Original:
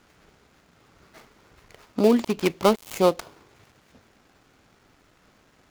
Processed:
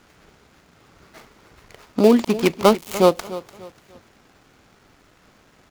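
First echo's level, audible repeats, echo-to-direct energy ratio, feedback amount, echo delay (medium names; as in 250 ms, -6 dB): -16.0 dB, 2, -15.5 dB, 33%, 294 ms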